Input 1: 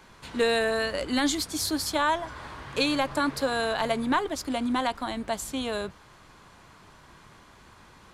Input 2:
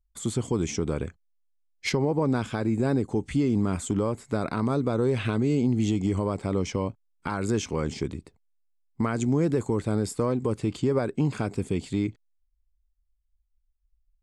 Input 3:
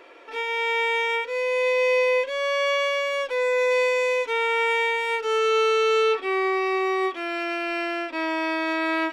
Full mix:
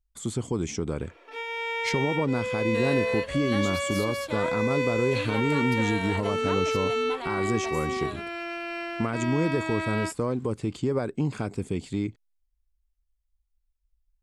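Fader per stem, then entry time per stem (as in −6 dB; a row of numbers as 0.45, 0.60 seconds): −11.0, −2.0, −6.5 decibels; 2.35, 0.00, 1.00 seconds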